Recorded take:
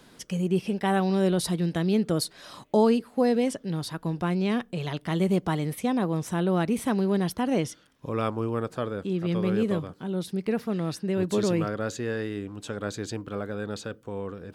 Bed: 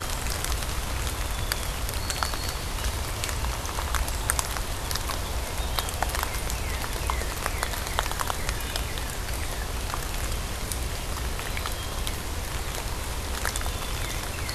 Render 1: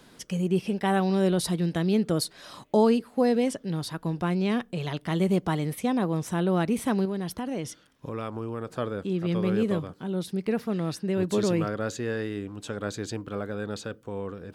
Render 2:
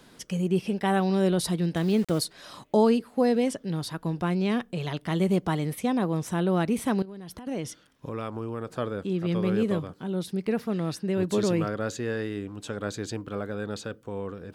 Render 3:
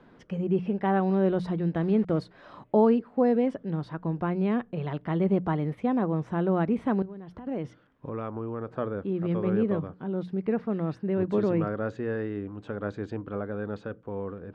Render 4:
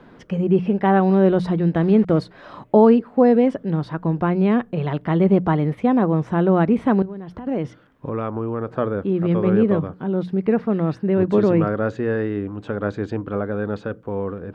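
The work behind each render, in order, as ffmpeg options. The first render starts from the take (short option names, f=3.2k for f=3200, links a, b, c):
-filter_complex "[0:a]asettb=1/sr,asplit=3[a][b][c];[a]atrim=end=7.054[d];[b]atrim=start=7.05:end=8.68,asetpts=PTS-STARTPTS,afade=t=in:d=0.004:c=qsin,afade=t=out:st=1.626:d=0.004:c=qsin,acompressor=threshold=-30dB:ratio=2.5:attack=3.2:release=140:knee=1:detection=peak[e];[c]atrim=start=8.676[f];[d][e]acrossfade=d=0.004:c1=hsin:c2=qsin[g];[g][f]acrossfade=d=0.004:c1=qsin:c2=hsin"
-filter_complex "[0:a]asettb=1/sr,asplit=3[a][b][c];[a]atrim=end=1.764[d];[b]atrim=start=1.76:end=2.2,asetpts=PTS-STARTPTS,afade=t=in:d=0.004:c=qsin,afade=t=out:st=0.436:d=0.004:c=qsin,aeval=exprs='val(0)*gte(abs(val(0)),0.0133)':c=same[e];[c]atrim=start=2.196[f];[d][e]acrossfade=d=0.004:c1=hsin:c2=qsin[g];[g][f]acrossfade=d=0.004:c1=qsin:c2=hsin,asettb=1/sr,asplit=3[h][i][j];[h]atrim=end=7.024[k];[i]atrim=start=7.02:end=7.47,asetpts=PTS-STARTPTS,afade=t=in:d=0.004:c=qsin,afade=t=out:st=0.446:d=0.004:c=qsin,acompressor=threshold=-37dB:ratio=16:attack=3.2:release=140:knee=1:detection=peak[l];[j]atrim=start=7.466[m];[k][l]acrossfade=d=0.004:c1=hsin:c2=qsin[n];[n][m]acrossfade=d=0.004:c1=qsin:c2=hsin"
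-af "lowpass=1.6k,bandreject=f=60:t=h:w=6,bandreject=f=120:t=h:w=6,bandreject=f=180:t=h:w=6"
-af "volume=8.5dB,alimiter=limit=-3dB:level=0:latency=1"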